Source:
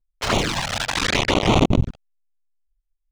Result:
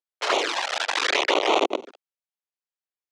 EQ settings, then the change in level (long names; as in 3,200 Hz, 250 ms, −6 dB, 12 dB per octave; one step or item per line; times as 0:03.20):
Butterworth high-pass 360 Hz 36 dB per octave
high-frequency loss of the air 61 metres
0.0 dB